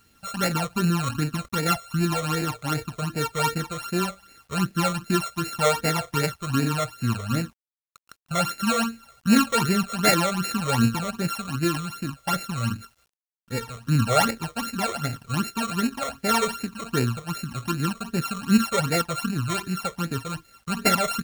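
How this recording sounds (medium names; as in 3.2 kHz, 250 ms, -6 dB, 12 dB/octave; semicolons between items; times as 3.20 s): a buzz of ramps at a fixed pitch in blocks of 32 samples; phasing stages 12, 2.6 Hz, lowest notch 270–1100 Hz; a quantiser's noise floor 10-bit, dither none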